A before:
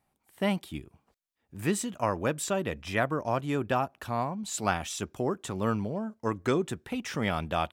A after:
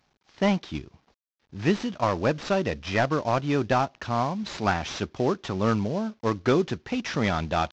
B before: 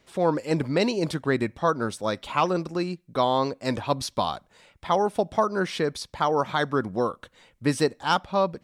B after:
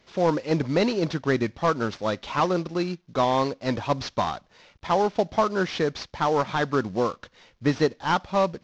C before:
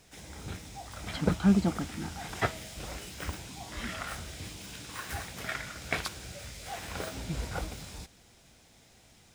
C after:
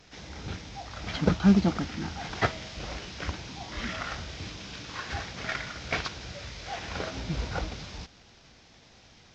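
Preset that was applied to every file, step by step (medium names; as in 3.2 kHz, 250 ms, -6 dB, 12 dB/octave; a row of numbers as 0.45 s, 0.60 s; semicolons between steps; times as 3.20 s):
CVSD coder 32 kbps; peak normalisation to -9 dBFS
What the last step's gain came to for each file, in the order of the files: +5.5 dB, +1.0 dB, +3.5 dB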